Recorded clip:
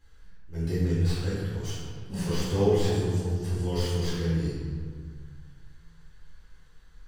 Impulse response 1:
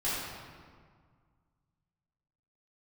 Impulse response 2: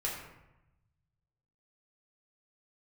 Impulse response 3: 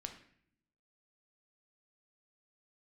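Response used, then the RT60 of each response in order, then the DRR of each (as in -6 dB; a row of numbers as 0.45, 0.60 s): 1; 1.8 s, 0.95 s, not exponential; -11.0, -4.5, 4.5 dB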